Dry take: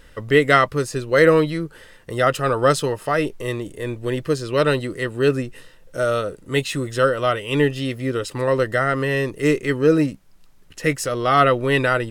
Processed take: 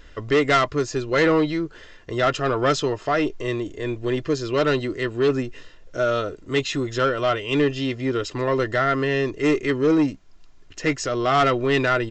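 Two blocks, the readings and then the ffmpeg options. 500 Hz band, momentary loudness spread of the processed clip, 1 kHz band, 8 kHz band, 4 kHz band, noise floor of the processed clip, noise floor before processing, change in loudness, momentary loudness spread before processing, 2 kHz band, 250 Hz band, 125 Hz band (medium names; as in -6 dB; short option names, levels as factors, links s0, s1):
-2.5 dB, 8 LU, -2.0 dB, -3.0 dB, 0.0 dB, -46 dBFS, -48 dBFS, -2.0 dB, 11 LU, -3.0 dB, 0.0 dB, -4.0 dB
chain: -af "aecho=1:1:2.9:0.42,aresample=16000,asoftclip=type=tanh:threshold=0.237,aresample=44100"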